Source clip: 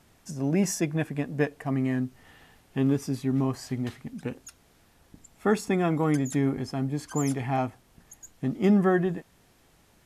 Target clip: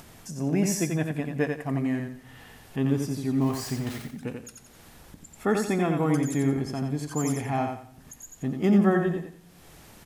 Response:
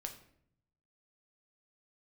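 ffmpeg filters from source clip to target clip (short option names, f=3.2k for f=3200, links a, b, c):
-filter_complex "[0:a]asettb=1/sr,asplit=3[a][b][c];[a]atrim=end=3.414[d];[b]atrim=start=3.41:end=4.02,asetpts=PTS-STARTPTS,afade=t=in:d=0.004:c=qsin,afade=t=out:st=0.606:d=0.004:c=qsin,aeval=exprs='val(0)+0.5*0.0141*sgn(val(0))':c=same[e];[c]atrim=start=4.016[f];[d][e]acrossfade=d=0.004:c1=hsin:c2=qsin[g];[g][f]acrossfade=d=0.004:c1=qsin:c2=hsin,aecho=1:1:88|176|264|352:0.562|0.163|0.0473|0.0137,asplit=2[h][i];[1:a]atrim=start_sample=2205,highshelf=f=7.2k:g=12[j];[i][j]afir=irnorm=-1:irlink=0,volume=-8dB[k];[h][k]amix=inputs=2:normalize=0,acompressor=mode=upward:threshold=-36dB:ratio=2.5,volume=-3dB"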